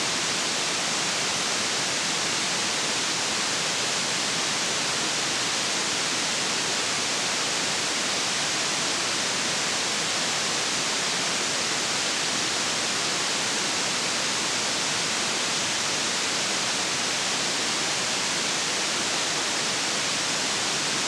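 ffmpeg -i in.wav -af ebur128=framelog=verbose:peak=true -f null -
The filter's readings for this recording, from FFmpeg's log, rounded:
Integrated loudness:
  I:         -23.5 LUFS
  Threshold: -33.5 LUFS
Loudness range:
  LRA:         0.1 LU
  Threshold: -43.5 LUFS
  LRA low:   -23.5 LUFS
  LRA high:  -23.4 LUFS
True peak:
  Peak:      -12.3 dBFS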